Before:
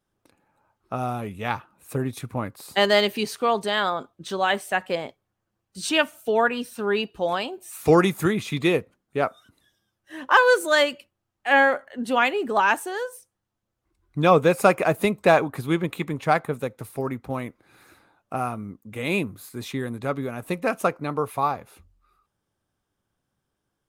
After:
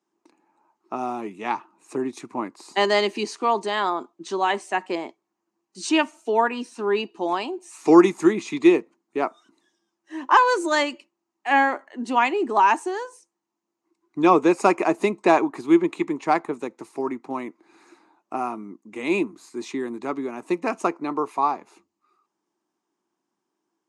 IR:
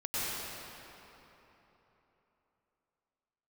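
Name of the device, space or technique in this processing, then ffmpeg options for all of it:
television speaker: -af "highpass=frequency=220:width=0.5412,highpass=frequency=220:width=1.3066,equalizer=frequency=340:width_type=q:width=4:gain=10,equalizer=frequency=530:width_type=q:width=4:gain=-9,equalizer=frequency=960:width_type=q:width=4:gain=7,equalizer=frequency=1500:width_type=q:width=4:gain=-6,equalizer=frequency=3400:width_type=q:width=4:gain=-7,equalizer=frequency=6700:width_type=q:width=4:gain=4,lowpass=frequency=7900:width=0.5412,lowpass=frequency=7900:width=1.3066"

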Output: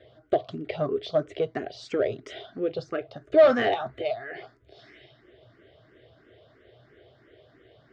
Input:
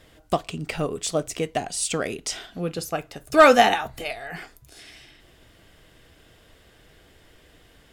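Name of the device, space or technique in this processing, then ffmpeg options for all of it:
barber-pole phaser into a guitar amplifier: -filter_complex "[0:a]asplit=2[link_01][link_02];[link_02]afreqshift=3[link_03];[link_01][link_03]amix=inputs=2:normalize=1,asoftclip=type=tanh:threshold=-18.5dB,highpass=100,equalizer=frequency=120:width_type=q:width=4:gain=9,equalizer=frequency=180:width_type=q:width=4:gain=-8,equalizer=frequency=390:width_type=q:width=4:gain=9,equalizer=frequency=620:width_type=q:width=4:gain=9,equalizer=frequency=920:width_type=q:width=4:gain=-8,equalizer=frequency=2600:width_type=q:width=4:gain=-9,lowpass=frequency=3700:width=0.5412,lowpass=frequency=3700:width=1.3066"

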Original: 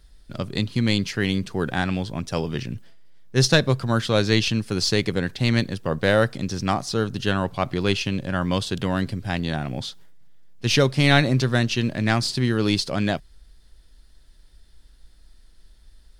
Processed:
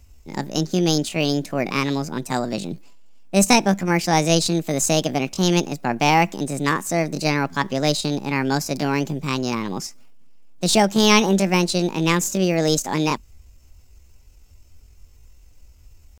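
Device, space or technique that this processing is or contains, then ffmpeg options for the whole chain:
chipmunk voice: -af "asetrate=66075,aresample=44100,atempo=0.66742,volume=2dB"

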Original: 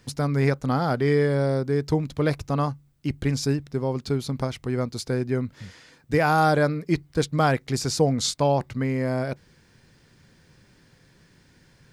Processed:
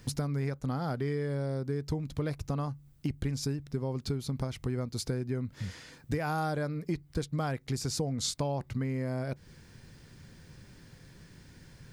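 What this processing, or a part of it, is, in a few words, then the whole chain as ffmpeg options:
ASMR close-microphone chain: -af "lowshelf=frequency=180:gain=7.5,acompressor=threshold=-30dB:ratio=6,highshelf=frequency=8300:gain=6"

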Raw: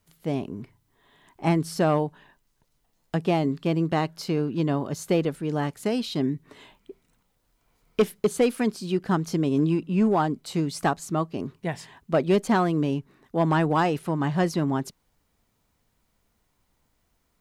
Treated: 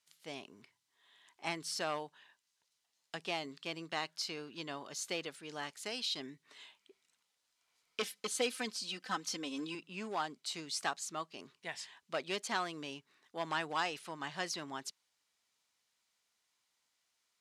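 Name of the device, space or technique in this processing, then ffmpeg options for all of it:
piezo pickup straight into a mixer: -filter_complex "[0:a]asettb=1/sr,asplit=3[link_01][link_02][link_03];[link_01]atrim=end=8.024[link_04];[link_02]atrim=start=8.02:end=9.75,asetpts=PTS-STARTPTS,afade=type=in:duration=0.004:curve=qsin,afade=type=out:start_time=1.726:duration=0.004:curve=qsin,aecho=1:1:3.9:0.82,atrim=end_sample=76293[link_05];[link_03]atrim=start=9.746[link_06];[link_04][link_05]acrossfade=duration=0.004:curve1=hsin:curve2=qsin[link_07];[link_07][link_06]acrossfade=duration=0.004:curve1=qsin:curve2=hsin,lowpass=5100,aderivative,volume=5.5dB"

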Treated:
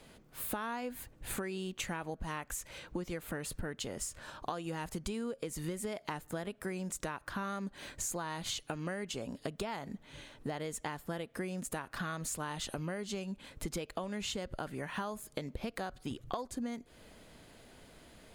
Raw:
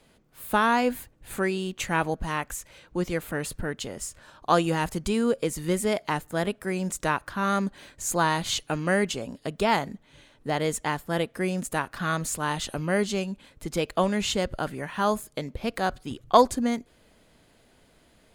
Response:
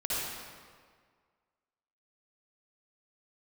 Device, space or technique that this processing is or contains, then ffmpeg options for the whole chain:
serial compression, leveller first: -af "acompressor=threshold=-26dB:ratio=3,acompressor=threshold=-39dB:ratio=6,volume=3dB"

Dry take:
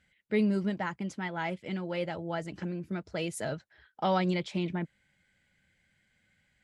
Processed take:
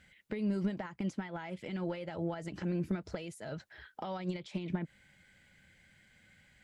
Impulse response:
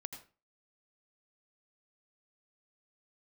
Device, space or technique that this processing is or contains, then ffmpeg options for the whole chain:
de-esser from a sidechain: -filter_complex "[0:a]asplit=2[link_01][link_02];[link_02]highpass=frequency=4600:poles=1,apad=whole_len=292814[link_03];[link_01][link_03]sidechaincompress=threshold=-58dB:ratio=10:attack=2.1:release=99,volume=7.5dB"

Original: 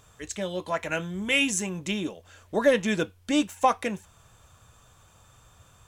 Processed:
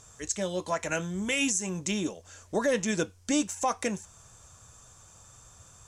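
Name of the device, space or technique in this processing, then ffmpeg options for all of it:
over-bright horn tweeter: -af "lowpass=7600,highshelf=frequency=4600:width_type=q:width=1.5:gain=9.5,alimiter=limit=-17dB:level=0:latency=1:release=108"

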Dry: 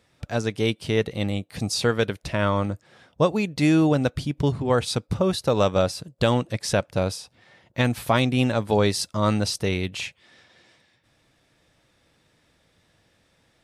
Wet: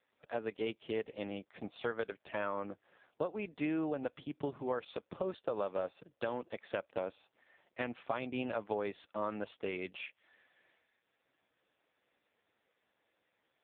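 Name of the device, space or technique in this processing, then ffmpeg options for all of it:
voicemail: -af "highpass=340,lowpass=3200,acompressor=threshold=-24dB:ratio=6,volume=-7dB" -ar 8000 -c:a libopencore_amrnb -b:a 5150

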